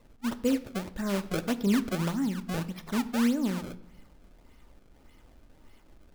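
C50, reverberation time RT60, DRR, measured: 16.5 dB, 0.80 s, 11.5 dB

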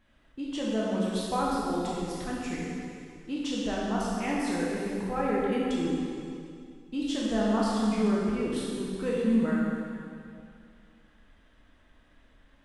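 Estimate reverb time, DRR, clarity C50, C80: 2.4 s, -6.0 dB, -2.5 dB, -1.0 dB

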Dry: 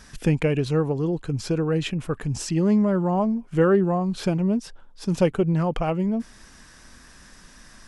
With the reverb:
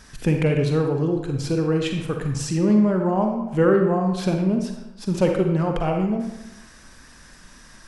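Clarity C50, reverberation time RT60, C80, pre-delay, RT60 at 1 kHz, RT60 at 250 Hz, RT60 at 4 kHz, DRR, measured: 4.5 dB, 1.0 s, 7.0 dB, 38 ms, 1.0 s, 0.95 s, 0.65 s, 3.0 dB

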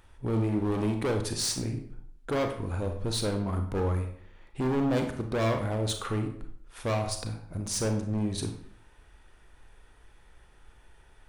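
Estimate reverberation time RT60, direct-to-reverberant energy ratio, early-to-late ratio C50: 0.55 s, 4.5 dB, 7.5 dB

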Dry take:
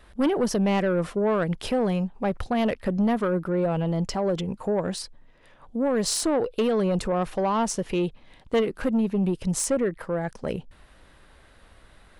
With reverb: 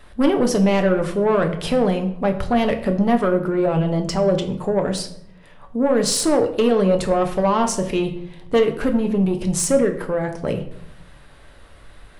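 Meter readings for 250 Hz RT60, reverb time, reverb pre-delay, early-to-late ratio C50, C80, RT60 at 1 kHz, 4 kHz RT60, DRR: 1.1 s, 0.70 s, 7 ms, 11.0 dB, 14.0 dB, 0.65 s, 0.45 s, 4.5 dB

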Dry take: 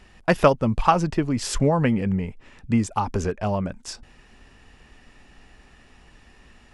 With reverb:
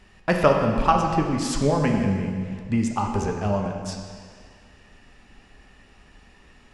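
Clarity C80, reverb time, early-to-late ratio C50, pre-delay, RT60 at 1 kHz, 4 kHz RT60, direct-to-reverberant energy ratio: 5.0 dB, 2.0 s, 3.5 dB, 5 ms, 2.0 s, 1.8 s, 1.5 dB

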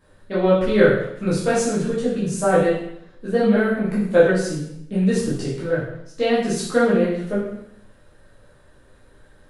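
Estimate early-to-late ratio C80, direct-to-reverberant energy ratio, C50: 5.5 dB, -9.5 dB, 2.0 dB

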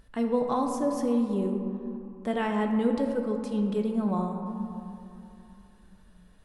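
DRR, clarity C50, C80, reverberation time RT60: 2.5 dB, 4.5 dB, 5.5 dB, 2.9 s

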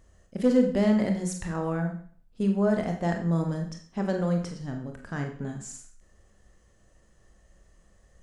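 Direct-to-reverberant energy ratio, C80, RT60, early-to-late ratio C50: 3.0 dB, 11.0 dB, 0.50 s, 7.5 dB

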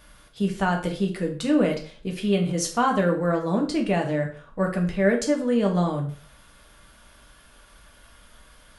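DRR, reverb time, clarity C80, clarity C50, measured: 1.0 dB, 0.45 s, 14.0 dB, 9.5 dB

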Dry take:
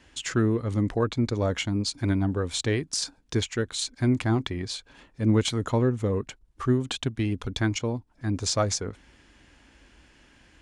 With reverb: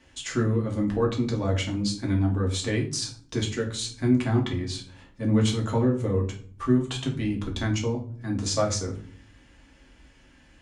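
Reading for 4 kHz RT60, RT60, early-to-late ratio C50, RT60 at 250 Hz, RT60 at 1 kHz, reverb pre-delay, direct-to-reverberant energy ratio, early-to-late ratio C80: 0.30 s, 0.50 s, 10.0 dB, 0.75 s, 0.45 s, 3 ms, -1.5 dB, 15.0 dB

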